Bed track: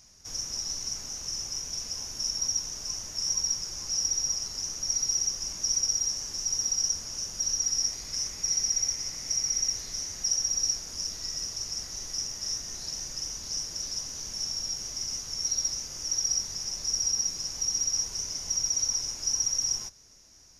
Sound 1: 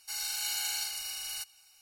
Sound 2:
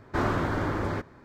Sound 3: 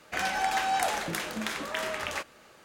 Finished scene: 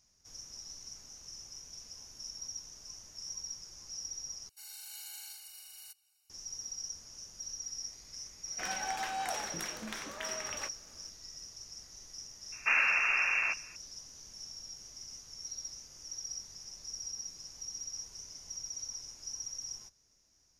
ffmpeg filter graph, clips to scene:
ffmpeg -i bed.wav -i cue0.wav -i cue1.wav -i cue2.wav -filter_complex "[0:a]volume=-14dB[link_01];[1:a]highshelf=frequency=7800:gain=10[link_02];[2:a]lowpass=frequency=2400:width_type=q:width=0.5098,lowpass=frequency=2400:width_type=q:width=0.6013,lowpass=frequency=2400:width_type=q:width=0.9,lowpass=frequency=2400:width_type=q:width=2.563,afreqshift=-2800[link_03];[link_01]asplit=2[link_04][link_05];[link_04]atrim=end=4.494[link_06];[link_02]atrim=end=1.81,asetpts=PTS-STARTPTS,volume=-17.5dB[link_07];[link_05]atrim=start=6.296[link_08];[3:a]atrim=end=2.64,asetpts=PTS-STARTPTS,volume=-9dB,afade=type=in:duration=0.004:curve=hsin,afade=type=out:start_time=2.636:duration=0.004:curve=hsin,adelay=8460[link_09];[link_03]atrim=end=1.24,asetpts=PTS-STARTPTS,volume=-1.5dB,afade=type=in:duration=0.004:curve=hsin,afade=type=out:start_time=1.236:duration=0.004:curve=hsin,adelay=552132S[link_10];[link_06][link_07]acrossfade=duration=0.004:curve1=hsin:curve2=hsin[link_11];[link_11][link_08]acrossfade=duration=0.004:curve1=hsin:curve2=hsin[link_12];[link_12][link_09][link_10]amix=inputs=3:normalize=0" out.wav

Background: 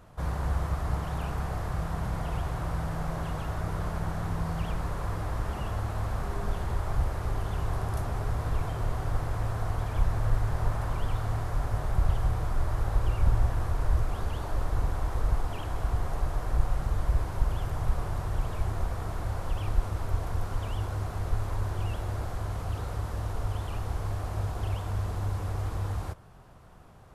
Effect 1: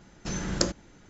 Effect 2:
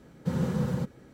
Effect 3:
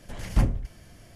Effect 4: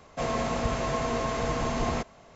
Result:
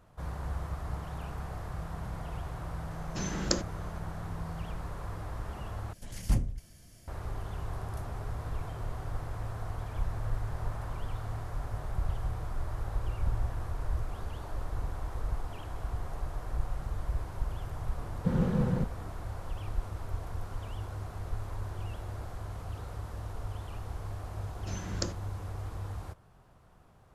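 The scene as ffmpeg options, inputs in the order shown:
ffmpeg -i bed.wav -i cue0.wav -i cue1.wav -i cue2.wav -filter_complex "[1:a]asplit=2[link_01][link_02];[0:a]volume=-7dB[link_03];[3:a]bass=frequency=250:gain=5,treble=frequency=4000:gain=11[link_04];[2:a]aemphasis=mode=reproduction:type=75fm[link_05];[link_03]asplit=2[link_06][link_07];[link_06]atrim=end=5.934[link_08];[link_04]atrim=end=1.15,asetpts=PTS-STARTPTS,volume=-10dB[link_09];[link_07]atrim=start=7.076[link_10];[link_01]atrim=end=1.09,asetpts=PTS-STARTPTS,volume=-3dB,afade=type=in:duration=0.004:curve=hsin,afade=type=out:start_time=1.086:duration=0.004:curve=hsin,adelay=2900[link_11];[link_05]atrim=end=1.13,asetpts=PTS-STARTPTS,volume=-1dB,afade=type=in:duration=0.004:curve=hsin,afade=type=out:start_time=1.126:duration=0.004:curve=hsin,adelay=17990[link_12];[link_02]atrim=end=1.09,asetpts=PTS-STARTPTS,volume=-9dB,afade=type=in:duration=0.004:curve=hsin,afade=type=out:start_time=1.086:duration=0.004:curve=hsin,adelay=24410[link_13];[link_08][link_09]acrossfade=duration=0.004:curve1=hsin:curve2=hsin[link_14];[link_14][link_10]acrossfade=duration=0.004:curve1=hsin:curve2=hsin[link_15];[link_15][link_11][link_12][link_13]amix=inputs=4:normalize=0" out.wav

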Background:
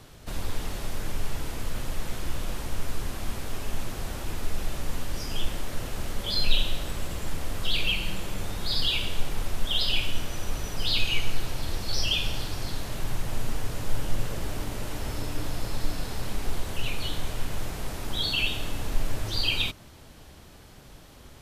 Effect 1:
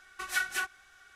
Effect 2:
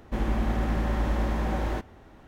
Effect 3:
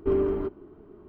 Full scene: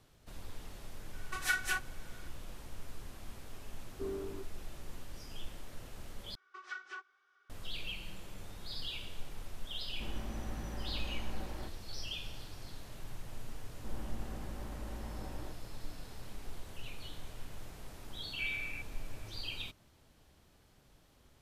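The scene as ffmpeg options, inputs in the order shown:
ffmpeg -i bed.wav -i cue0.wav -i cue1.wav -i cue2.wav -filter_complex "[1:a]asplit=2[link_01][link_02];[3:a]asplit=2[link_03][link_04];[2:a]asplit=2[link_05][link_06];[0:a]volume=-15.5dB[link_07];[link_02]highpass=350,equalizer=frequency=390:width_type=q:width=4:gain=9,equalizer=frequency=690:width_type=q:width=4:gain=-6,equalizer=frequency=1200:width_type=q:width=4:gain=9,equalizer=frequency=1800:width_type=q:width=4:gain=-3,equalizer=frequency=2600:width_type=q:width=4:gain=-4,equalizer=frequency=4000:width_type=q:width=4:gain=-5,lowpass=frequency=5100:width=0.5412,lowpass=frequency=5100:width=1.3066[link_08];[link_06]lowpass=1900[link_09];[link_04]lowpass=frequency=2300:width_type=q:width=0.5098,lowpass=frequency=2300:width_type=q:width=0.6013,lowpass=frequency=2300:width_type=q:width=0.9,lowpass=frequency=2300:width_type=q:width=2.563,afreqshift=-2700[link_10];[link_07]asplit=2[link_11][link_12];[link_11]atrim=end=6.354[link_13];[link_08]atrim=end=1.15,asetpts=PTS-STARTPTS,volume=-14.5dB[link_14];[link_12]atrim=start=7.496[link_15];[link_01]atrim=end=1.15,asetpts=PTS-STARTPTS,volume=-2dB,afade=type=in:duration=0.004:curve=hsin,afade=type=out:start_time=1.146:duration=0.004:curve=hsin,adelay=1130[link_16];[link_03]atrim=end=1.08,asetpts=PTS-STARTPTS,volume=-16dB,afade=type=in:duration=0.004:curve=hsin,afade=type=out:start_time=1.076:duration=0.004:curve=hsin,adelay=3940[link_17];[link_05]atrim=end=2.27,asetpts=PTS-STARTPTS,volume=-16dB,afade=type=in:duration=0.004:curve=hsin,afade=type=out:start_time=2.266:duration=0.004:curve=hsin,adelay=9880[link_18];[link_09]atrim=end=2.27,asetpts=PTS-STARTPTS,volume=-18dB,afade=type=in:duration=0.004:curve=hsin,afade=type=out:start_time=2.266:duration=0.004:curve=hsin,adelay=13720[link_19];[link_10]atrim=end=1.08,asetpts=PTS-STARTPTS,volume=-15.5dB,afade=type=in:duration=0.004:curve=hsin,afade=type=out:start_time=1.076:duration=0.004:curve=hsin,adelay=18330[link_20];[link_13][link_14]acrossfade=duration=0.004:curve1=hsin:curve2=hsin[link_21];[link_21][link_15]acrossfade=duration=0.004:curve1=hsin:curve2=hsin[link_22];[link_22][link_16][link_17][link_18][link_19][link_20]amix=inputs=6:normalize=0" out.wav

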